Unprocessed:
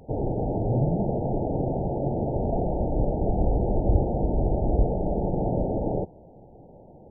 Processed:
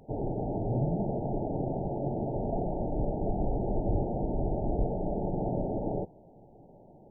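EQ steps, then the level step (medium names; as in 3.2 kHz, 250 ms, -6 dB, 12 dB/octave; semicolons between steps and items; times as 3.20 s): peaking EQ 65 Hz -12 dB 0.6 oct; band-stop 500 Hz, Q 12; -4.5 dB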